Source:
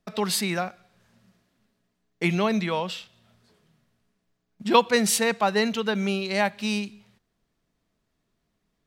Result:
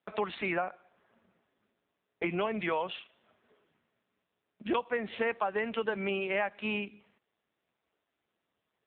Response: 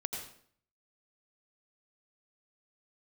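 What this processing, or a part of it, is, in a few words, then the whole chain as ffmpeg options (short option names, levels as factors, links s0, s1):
voicemail: -filter_complex "[0:a]asettb=1/sr,asplit=3[s0][s1][s2];[s0]atrim=end=0.534[s3];[s1]atrim=start=0.53:end=2.39,asetpts=PTS-STARTPTS,afade=t=in:d=0.004:c=qsin,afade=t=out:st=1.856:d=0.004:c=qsin,aemphasis=mode=reproduction:type=75fm[s4];[s2]atrim=start=2.386[s5];[s3][s4]acrossfade=d=0.004:c1=hsin:c2=qsin[s6];[s6][s5]acrossfade=d=0.004:c1=qsin:c2=hsin,highpass=350,lowpass=3000,acompressor=threshold=0.0398:ratio=8,volume=1.26" -ar 8000 -c:a libopencore_amrnb -b:a 5900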